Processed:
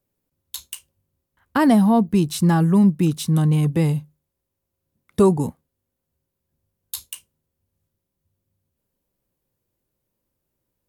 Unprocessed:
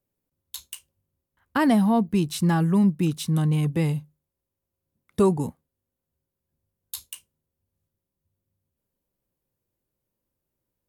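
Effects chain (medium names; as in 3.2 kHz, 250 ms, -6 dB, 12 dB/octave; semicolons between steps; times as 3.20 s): dynamic bell 2.4 kHz, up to -4 dB, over -41 dBFS, Q 0.98; trim +4.5 dB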